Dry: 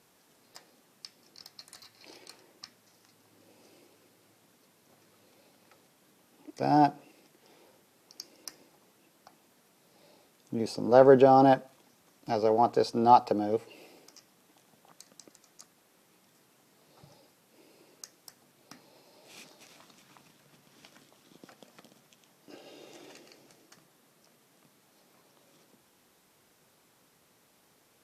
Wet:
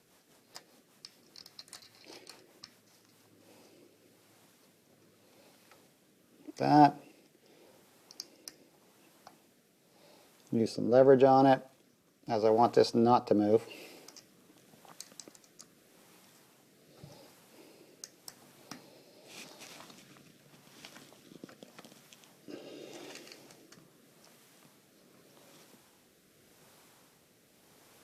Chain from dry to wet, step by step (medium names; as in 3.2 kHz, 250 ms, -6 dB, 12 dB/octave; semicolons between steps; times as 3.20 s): gain riding within 3 dB 0.5 s; rotary cabinet horn 5 Hz, later 0.85 Hz, at 2.87 s; trim +2.5 dB